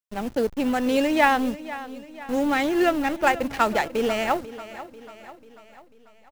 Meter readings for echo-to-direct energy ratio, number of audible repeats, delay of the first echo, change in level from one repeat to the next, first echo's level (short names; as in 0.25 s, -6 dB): -14.0 dB, 4, 0.492 s, -5.5 dB, -15.5 dB